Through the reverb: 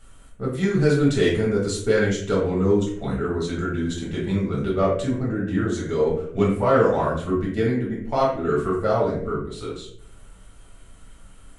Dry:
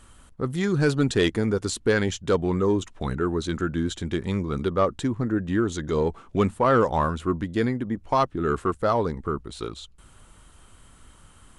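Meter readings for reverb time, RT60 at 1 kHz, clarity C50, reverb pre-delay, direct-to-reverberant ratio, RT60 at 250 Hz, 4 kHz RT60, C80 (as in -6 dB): 0.65 s, 0.50 s, 4.0 dB, 3 ms, -6.5 dB, 0.70 s, 0.35 s, 8.0 dB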